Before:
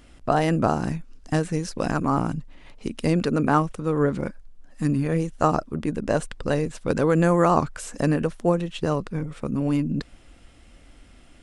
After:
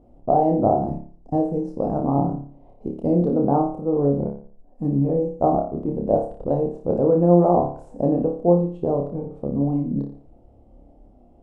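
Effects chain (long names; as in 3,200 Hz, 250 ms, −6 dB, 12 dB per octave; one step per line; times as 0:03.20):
drawn EQ curve 130 Hz 0 dB, 760 Hz +6 dB, 1,600 Hz −29 dB
flutter between parallel walls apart 4.9 metres, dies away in 0.46 s
level −2.5 dB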